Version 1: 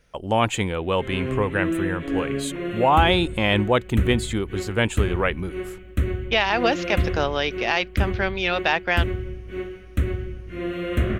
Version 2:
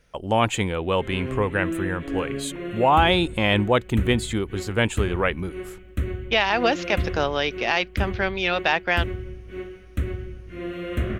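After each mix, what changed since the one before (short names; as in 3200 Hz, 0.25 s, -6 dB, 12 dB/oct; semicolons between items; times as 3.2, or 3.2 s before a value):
background -3.5 dB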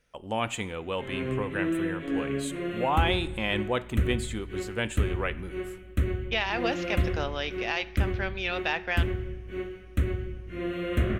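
speech -9.5 dB; reverb: on, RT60 1.1 s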